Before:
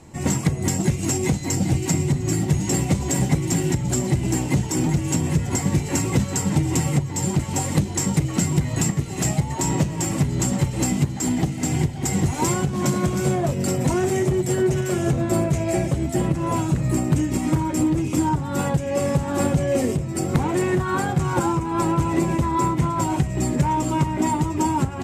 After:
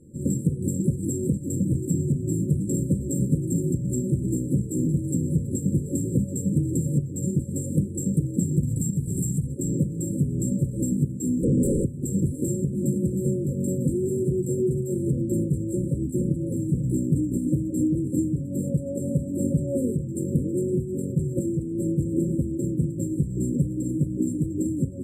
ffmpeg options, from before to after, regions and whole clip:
ffmpeg -i in.wav -filter_complex "[0:a]asettb=1/sr,asplit=3[link_01][link_02][link_03];[link_01]atrim=end=8.634[link_04];[link_02]atrim=start=8.63:end=9.47,asetpts=PTS-STARTPTS,afade=type=in:duration=0.004:curve=qsin,afade=type=out:start_time=0.836:duration=0.004:curve=qsin,bass=frequency=250:gain=11,treble=frequency=4000:gain=14,acompressor=threshold=-18dB:ratio=6:attack=3.2:release=140:knee=1:detection=peak[link_05];[link_03]atrim=start=9.466[link_06];[link_04][link_05]acrossfade=duration=0.004:curve1=hsin:curve2=qsin[link_07];[link_07][link_06]acrossfade=duration=0.004:curve1=qsin:curve2=hsin,asettb=1/sr,asplit=3[link_08][link_09][link_10];[link_08]atrim=end=11.434[link_11];[link_09]atrim=start=11.43:end=11.85,asetpts=PTS-STARTPTS,afade=type=in:duration=0.004:curve=qsin,afade=type=out:start_time=0.416:duration=0.004:curve=qsin,lowpass=frequency=4700:width=0.5412,lowpass=frequency=4700:width=1.3066,aeval=exprs='0.355*sin(PI/2*7.08*val(0)/0.355)':channel_layout=same,tiltshelf=frequency=1300:gain=-5[link_12];[link_10]atrim=start=11.846[link_13];[link_11][link_12]acrossfade=duration=0.004:curve1=hsin:curve2=qsin[link_14];[link_14][link_13]acrossfade=duration=0.004:curve1=qsin:curve2=hsin,afftfilt=real='re*(1-between(b*sr/4096,570,7300))':imag='im*(1-between(b*sr/4096,570,7300))':win_size=4096:overlap=0.75,equalizer=frequency=210:width=0.76:gain=6.5,volume=-7.5dB" out.wav

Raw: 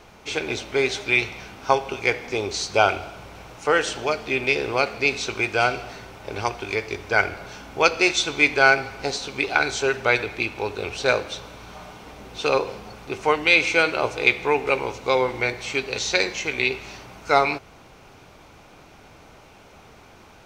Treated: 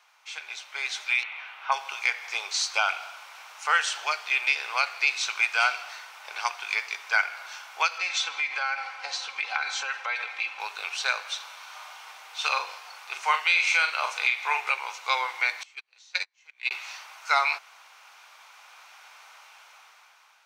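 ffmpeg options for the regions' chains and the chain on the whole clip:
ffmpeg -i in.wav -filter_complex "[0:a]asettb=1/sr,asplit=3[link_01][link_02][link_03];[link_01]atrim=end=1.234[link_04];[link_02]atrim=start=1.23:end=1.72,asetpts=PTS-STARTPTS,afade=type=in:duration=0.004:curve=qsin,afade=type=out:start_time=0.486:duration=0.004:curve=qsin,acrossover=split=3700[link_05][link_06];[link_06]acompressor=threshold=-52dB:ratio=4:attack=1:release=60[link_07];[link_05][link_07]amix=inputs=2:normalize=0,highshelf=frequency=4100:width_type=q:width=1.5:gain=-11[link_08];[link_03]atrim=start=1.716[link_09];[link_04][link_08]acrossfade=duration=0.004:curve1=hsin:curve2=qsin[link_10];[link_10][link_09]acrossfade=duration=0.004:curve1=qsin:curve2=hsin,asettb=1/sr,asplit=3[link_11][link_12][link_13];[link_11]atrim=end=7.984[link_14];[link_12]atrim=start=7.98:end=10.6,asetpts=PTS-STARTPTS,afade=type=in:duration=0.004:curve=qsin,afade=type=out:start_time=2.616:duration=0.004:curve=qsin,aemphasis=mode=reproduction:type=bsi,aecho=1:1:3.8:0.65,atrim=end_sample=115542,acompressor=threshold=-21dB:ratio=12:attack=3.2:release=140:knee=1:detection=peak[link_15];[link_13]atrim=start=10.596[link_16];[link_14][link_15]acrossfade=duration=0.004:curve1=hsin:curve2=qsin[link_17];[link_17][link_16]acrossfade=duration=0.004:curve1=qsin:curve2=hsin,asettb=1/sr,asplit=3[link_18][link_19][link_20];[link_18]atrim=end=11.364[link_21];[link_19]atrim=start=11.36:end=14.71,asetpts=PTS-STARTPTS,afade=type=in:duration=0.004:curve=qsin,afade=type=out:start_time=3.346:duration=0.004:curve=qsin,highpass=frequency=340:width=0.5412,highpass=frequency=340:width=1.3066,asplit=2[link_22][link_23];[link_23]adelay=41,volume=-7.5dB[link_24];[link_22][link_24]amix=inputs=2:normalize=0,atrim=end_sample=147735[link_25];[link_20]atrim=start=14.706[link_26];[link_21][link_25]acrossfade=duration=0.004:curve1=hsin:curve2=qsin[link_27];[link_27][link_26]acrossfade=duration=0.004:curve1=qsin:curve2=hsin,asettb=1/sr,asplit=3[link_28][link_29][link_30];[link_28]atrim=end=15.634[link_31];[link_29]atrim=start=15.63:end=16.71,asetpts=PTS-STARTPTS,afade=type=in:duration=0.004:curve=qsin,afade=type=out:start_time=1.076:duration=0.004:curve=qsin,agate=range=-47dB:threshold=-20dB:ratio=16:release=100:detection=peak,acompressor=mode=upward:threshold=-37dB:ratio=2.5:attack=3.2:release=140:knee=2.83:detection=peak[link_32];[link_30]atrim=start=16.706[link_33];[link_31][link_32]acrossfade=duration=0.004:curve1=hsin:curve2=qsin[link_34];[link_34][link_33]acrossfade=duration=0.004:curve1=qsin:curve2=hsin,highpass=frequency=940:width=0.5412,highpass=frequency=940:width=1.3066,alimiter=limit=-12dB:level=0:latency=1:release=190,dynaudnorm=framelen=410:gausssize=5:maxgain=11.5dB,volume=-8.5dB" out.wav

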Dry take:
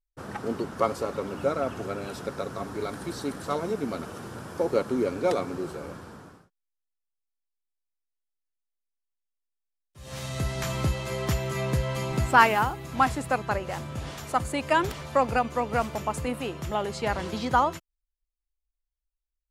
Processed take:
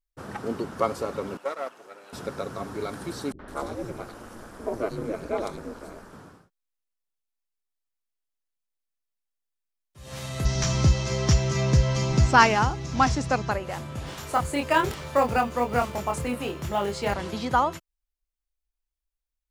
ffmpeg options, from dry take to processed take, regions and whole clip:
ffmpeg -i in.wav -filter_complex "[0:a]asettb=1/sr,asplit=3[link_01][link_02][link_03];[link_01]atrim=end=1.374[link_04];[link_02]atrim=start=1.37:end=2.13,asetpts=PTS-STARTPTS,afade=type=in:duration=0.004:curve=qsin,afade=type=out:start_time=0.756:duration=0.004:curve=qsin,aeval=exprs='if(lt(val(0),0),0.447*val(0),val(0))':channel_layout=same,highpass=490,agate=range=-8dB:threshold=-35dB:ratio=16:release=100:detection=peak[link_05];[link_03]atrim=start=2.126[link_06];[link_04][link_05]acrossfade=duration=0.004:curve1=hsin:curve2=qsin[link_07];[link_07][link_06]acrossfade=duration=0.004:curve1=qsin:curve2=hsin,asettb=1/sr,asplit=3[link_08][link_09][link_10];[link_08]atrim=end=3.324[link_11];[link_09]atrim=start=3.32:end=6.13,asetpts=PTS-STARTPTS,afade=type=in:duration=0.004:curve=qsin,afade=type=out:start_time=2.806:duration=0.004:curve=qsin,acrossover=split=280|3400[link_12][link_13][link_14];[link_13]adelay=70[link_15];[link_14]adelay=160[link_16];[link_12][link_15][link_16]amix=inputs=3:normalize=0,atrim=end_sample=123921,aeval=exprs='val(0)*sin(2*PI*110*n/s)':channel_layout=same[link_17];[link_10]atrim=start=6.126[link_18];[link_11][link_17]acrossfade=duration=0.004:curve1=hsin:curve2=qsin[link_19];[link_19][link_18]acrossfade=duration=0.004:curve1=qsin:curve2=hsin,asettb=1/sr,asplit=3[link_20][link_21][link_22];[link_20]atrim=end=10.454[link_23];[link_21]atrim=start=10.45:end=13.51,asetpts=PTS-STARTPTS,afade=type=in:duration=0.004:curve=qsin,afade=type=out:start_time=3.056:duration=0.004:curve=qsin,lowpass=frequency=5800:width_type=q:width=4.8,lowshelf=frequency=230:gain=9[link_24];[link_22]atrim=start=13.506[link_25];[link_23][link_24]acrossfade=duration=0.004:curve1=hsin:curve2=qsin[link_26];[link_26][link_25]acrossfade=duration=0.004:curve1=qsin:curve2=hsin,asettb=1/sr,asplit=3[link_27][link_28][link_29];[link_27]atrim=end=14.064[link_30];[link_28]atrim=start=14.06:end=17.14,asetpts=PTS-STARTPTS,afade=type=in:duration=0.004:curve=qsin,afade=type=out:start_time=3.076:duration=0.004:curve=qsin,asplit=2[link_31][link_32];[link_32]adelay=25,volume=-3.5dB[link_33];[link_31][link_33]amix=inputs=2:normalize=0,atrim=end_sample=135828,acrusher=bits=7:mode=log:mix=0:aa=0.000001[link_34];[link_29]atrim=start=17.136[link_35];[link_30][link_34]acrossfade=duration=0.004:curve1=hsin:curve2=qsin[link_36];[link_36][link_35]acrossfade=duration=0.004:curve1=qsin:curve2=hsin" out.wav

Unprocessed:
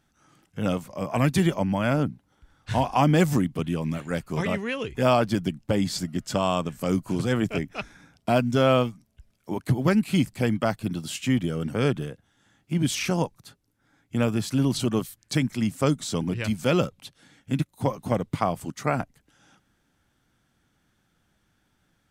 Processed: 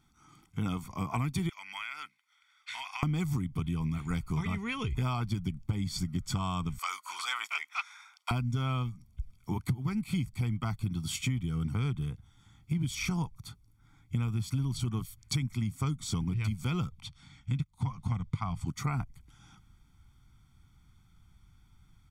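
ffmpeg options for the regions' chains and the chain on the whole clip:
ffmpeg -i in.wav -filter_complex "[0:a]asettb=1/sr,asplit=3[link_01][link_02][link_03];[link_01]atrim=end=1.494[link_04];[link_02]atrim=start=1.49:end=3.03,asetpts=PTS-STARTPTS,afade=type=in:duration=0.004:curve=qsin,afade=type=out:start_time=1.536:duration=0.004:curve=qsin,highpass=frequency=2000:width_type=q:width=2.4,highshelf=frequency=10000:gain=-8,acompressor=threshold=-34dB:ratio=6:attack=3.2:release=140:knee=1:detection=peak[link_05];[link_03]atrim=start=3.026[link_06];[link_04][link_05]acrossfade=duration=0.004:curve1=hsin:curve2=qsin[link_07];[link_07][link_06]acrossfade=duration=0.004:curve1=qsin:curve2=hsin,asettb=1/sr,asplit=3[link_08][link_09][link_10];[link_08]atrim=end=6.784[link_11];[link_09]atrim=start=6.78:end=8.31,asetpts=PTS-STARTPTS,afade=type=in:duration=0.004:curve=qsin,afade=type=out:start_time=1.526:duration=0.004:curve=qsin,highshelf=frequency=8500:gain=-8.5,acontrast=39,highpass=frequency=1000:width=0.5412,highpass=frequency=1000:width=1.3066[link_12];[link_10]atrim=start=8.306[link_13];[link_11][link_12]acrossfade=duration=0.004:curve1=hsin:curve2=qsin[link_14];[link_14][link_13]acrossfade=duration=0.004:curve1=qsin:curve2=hsin,asettb=1/sr,asplit=3[link_15][link_16][link_17];[link_15]atrim=end=17.014[link_18];[link_16]atrim=start=17.01:end=18.67,asetpts=PTS-STARTPTS,afade=type=in:duration=0.004:curve=qsin,afade=type=out:start_time=1.656:duration=0.004:curve=qsin,lowpass=7100,equalizer=frequency=400:width_type=o:width=0.78:gain=-12.5[link_19];[link_17]atrim=start=18.666[link_20];[link_18][link_19]acrossfade=duration=0.004:curve1=hsin:curve2=qsin[link_21];[link_21][link_20]acrossfade=duration=0.004:curve1=qsin:curve2=hsin,aecho=1:1:0.9:0.9,asubboost=boost=5:cutoff=120,acompressor=threshold=-26dB:ratio=6,volume=-3dB" out.wav

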